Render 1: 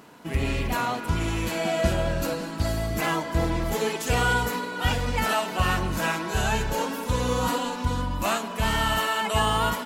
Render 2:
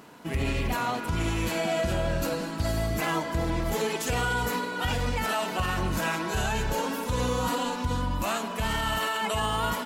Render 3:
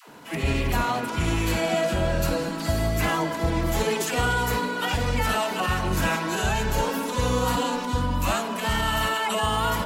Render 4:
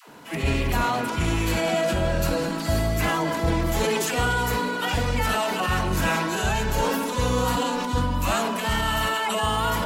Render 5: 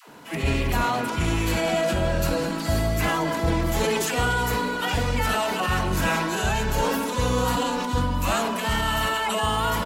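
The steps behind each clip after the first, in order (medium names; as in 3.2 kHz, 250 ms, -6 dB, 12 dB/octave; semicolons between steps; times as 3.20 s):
peak limiter -18.5 dBFS, peak gain reduction 8.5 dB
phase dispersion lows, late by 93 ms, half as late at 520 Hz; trim +3.5 dB
decay stretcher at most 23 dB/s
delay 984 ms -23 dB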